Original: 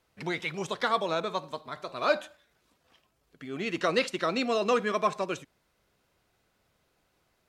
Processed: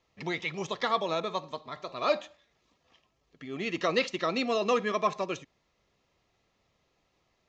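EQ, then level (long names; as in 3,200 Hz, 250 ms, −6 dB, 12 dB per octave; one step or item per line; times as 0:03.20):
Butterworth band-reject 1,500 Hz, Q 7.2
elliptic low-pass filter 6,700 Hz, stop band 50 dB
0.0 dB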